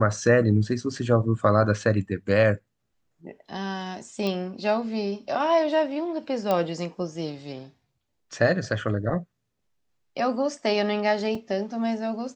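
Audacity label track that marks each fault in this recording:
4.270000	4.270000	pop -17 dBFS
6.510000	6.510000	pop -12 dBFS
11.350000	11.350000	gap 3.2 ms

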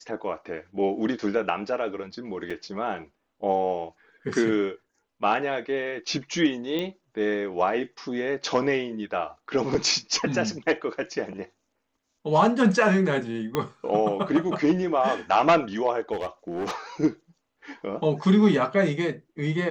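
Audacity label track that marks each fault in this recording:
2.500000	2.500000	gap 4.9 ms
6.790000	6.790000	pop -16 dBFS
13.550000	13.550000	pop -11 dBFS
16.120000	16.750000	clipped -25 dBFS

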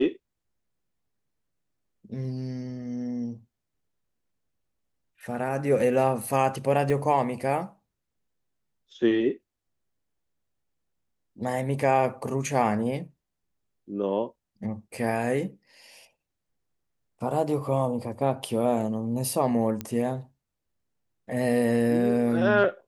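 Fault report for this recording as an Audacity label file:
6.900000	6.900000	gap 2.5 ms
19.810000	19.810000	pop -17 dBFS

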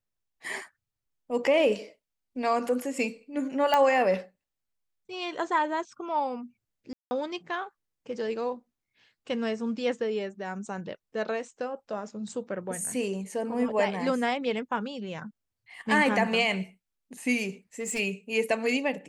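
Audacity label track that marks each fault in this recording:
3.740000	3.740000	pop -11 dBFS
6.930000	7.110000	gap 0.18 s
17.790000	18.000000	clipped -27 dBFS

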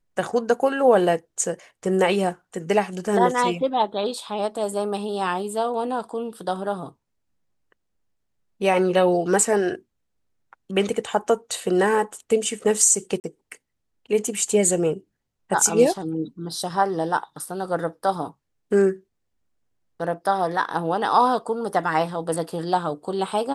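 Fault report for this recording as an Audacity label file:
13.200000	13.240000	gap 39 ms

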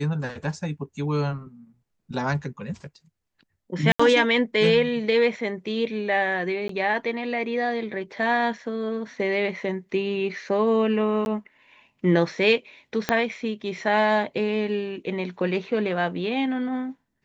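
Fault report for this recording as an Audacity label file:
3.920000	4.000000	gap 75 ms
6.680000	6.690000	gap 13 ms
11.250000	11.260000	gap 11 ms
13.090000	13.090000	pop -7 dBFS

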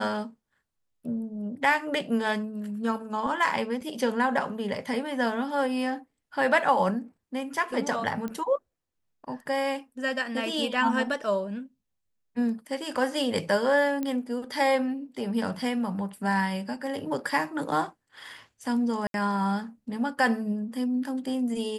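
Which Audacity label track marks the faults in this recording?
3.810000	3.810000	gap 4.5 ms
8.280000	8.280000	pop -22 dBFS
14.030000	14.030000	pop -18 dBFS
19.070000	19.140000	gap 72 ms

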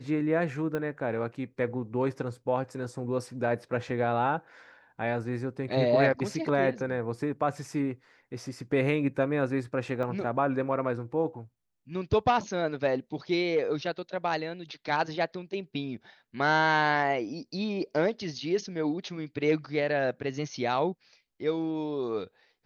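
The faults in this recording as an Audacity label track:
0.750000	0.750000	pop -20 dBFS
10.030000	10.030000	gap 2 ms

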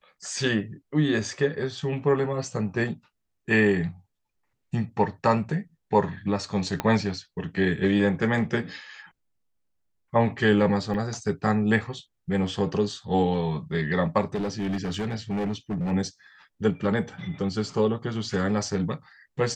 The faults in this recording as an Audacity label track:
6.800000	6.800000	pop -11 dBFS
10.940000	10.940000	gap 3.7 ms
14.340000	15.920000	clipped -24.5 dBFS

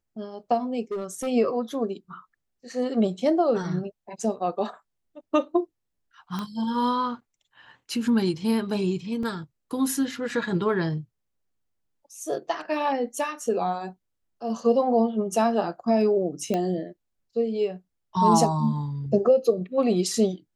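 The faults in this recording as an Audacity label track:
0.910000	1.280000	clipped -26 dBFS
6.390000	6.390000	pop -18 dBFS
9.230000	9.230000	gap 3.1 ms
16.540000	16.540000	pop -14 dBFS

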